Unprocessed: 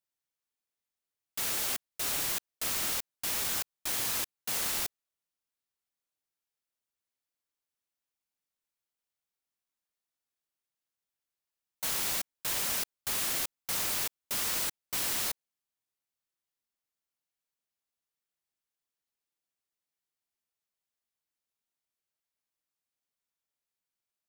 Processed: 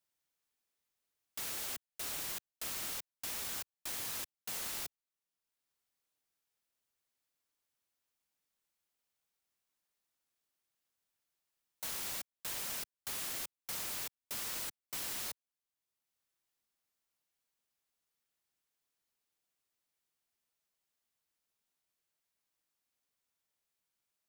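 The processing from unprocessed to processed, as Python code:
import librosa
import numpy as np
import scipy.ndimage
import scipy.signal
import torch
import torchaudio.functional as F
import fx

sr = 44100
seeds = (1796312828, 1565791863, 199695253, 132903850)

y = fx.band_squash(x, sr, depth_pct=40)
y = y * librosa.db_to_amplitude(-8.5)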